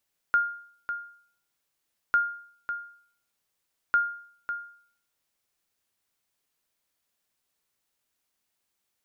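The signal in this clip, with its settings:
ping with an echo 1,410 Hz, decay 0.55 s, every 1.80 s, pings 3, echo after 0.55 s, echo −9.5 dB −15.5 dBFS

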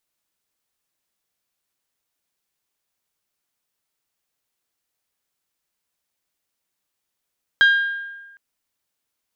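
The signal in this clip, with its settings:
struck glass bell, length 0.76 s, lowest mode 1,610 Hz, decay 1.23 s, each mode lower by 9.5 dB, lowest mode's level −9 dB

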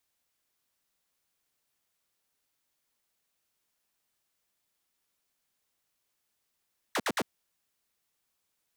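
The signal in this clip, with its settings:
repeated falling chirps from 2,200 Hz, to 160 Hz, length 0.05 s saw, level −24 dB, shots 3, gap 0.06 s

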